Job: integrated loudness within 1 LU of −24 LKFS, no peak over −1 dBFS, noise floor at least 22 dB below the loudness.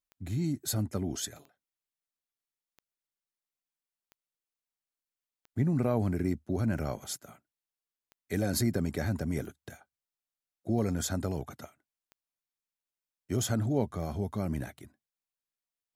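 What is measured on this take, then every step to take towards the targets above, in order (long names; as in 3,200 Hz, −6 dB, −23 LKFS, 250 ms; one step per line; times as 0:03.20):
number of clicks 12; integrated loudness −32.5 LKFS; sample peak −15.5 dBFS; target loudness −24.0 LKFS
→ click removal
level +8.5 dB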